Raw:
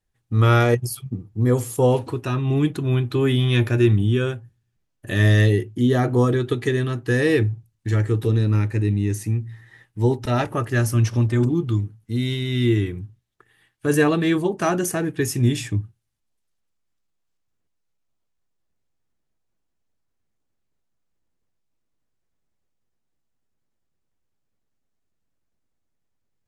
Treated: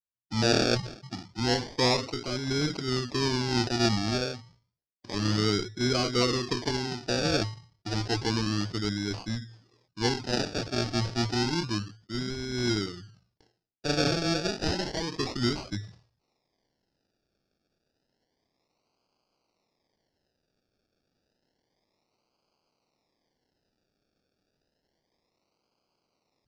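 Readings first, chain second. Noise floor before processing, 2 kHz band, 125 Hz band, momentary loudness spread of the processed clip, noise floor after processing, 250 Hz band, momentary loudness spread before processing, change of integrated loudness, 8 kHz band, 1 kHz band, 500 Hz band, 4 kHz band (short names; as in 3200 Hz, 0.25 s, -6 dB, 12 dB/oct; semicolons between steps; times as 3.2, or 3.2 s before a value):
-74 dBFS, -6.0 dB, -13.5 dB, 11 LU, -81 dBFS, -7.5 dB, 9 LU, -7.5 dB, -2.5 dB, -5.0 dB, -8.0 dB, +4.0 dB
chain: bin magnitudes rounded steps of 30 dB; low-pass opened by the level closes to 1500 Hz, open at -18 dBFS; HPF 170 Hz 6 dB/oct; gate with hold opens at -48 dBFS; bell 1700 Hz -14 dB 0.29 oct; reverse; upward compressor, threshold -42 dBFS; reverse; decimation with a swept rate 34×, swing 60% 0.3 Hz; in parallel at -9.5 dB: Schmitt trigger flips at -20 dBFS; on the sum: synth low-pass 5100 Hz, resonance Q 5.8; sustainer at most 130 dB/s; gain -7.5 dB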